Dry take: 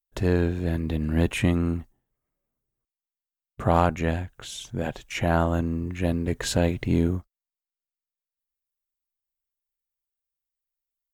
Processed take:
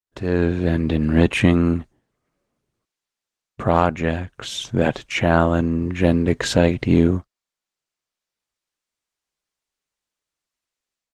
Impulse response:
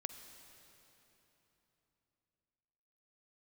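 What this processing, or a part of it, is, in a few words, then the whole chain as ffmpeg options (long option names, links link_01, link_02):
video call: -af "highpass=frequency=130:poles=1,lowpass=6400,equalizer=frequency=790:width_type=o:width=0.34:gain=-2.5,dynaudnorm=framelen=260:gausssize=3:maxgain=15.5dB,volume=-1dB" -ar 48000 -c:a libopus -b:a 20k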